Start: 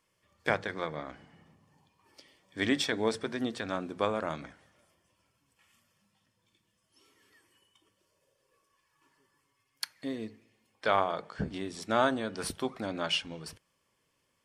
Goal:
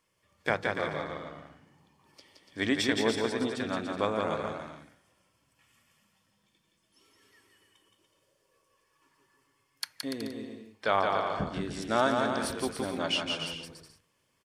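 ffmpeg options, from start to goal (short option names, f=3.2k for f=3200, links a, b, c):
-af "aecho=1:1:170|289|372.3|430.6|471.4:0.631|0.398|0.251|0.158|0.1"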